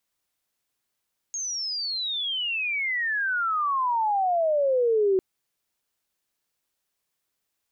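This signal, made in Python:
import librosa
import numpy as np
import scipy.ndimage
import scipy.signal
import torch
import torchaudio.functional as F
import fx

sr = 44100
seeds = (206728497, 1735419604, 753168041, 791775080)

y = fx.chirp(sr, length_s=3.85, from_hz=6600.0, to_hz=370.0, law='logarithmic', from_db=-28.0, to_db=-18.0)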